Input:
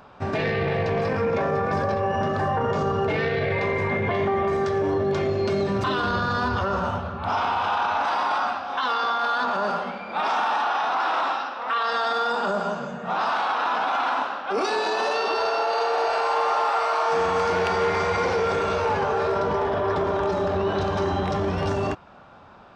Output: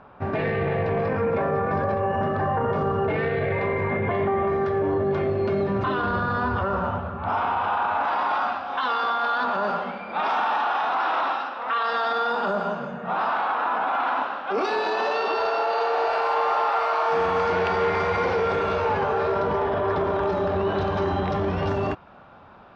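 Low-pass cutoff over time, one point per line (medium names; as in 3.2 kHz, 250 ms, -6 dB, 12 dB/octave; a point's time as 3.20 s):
7.90 s 2.2 kHz
8.52 s 3.6 kHz
12.52 s 3.6 kHz
13.77 s 2 kHz
14.45 s 3.6 kHz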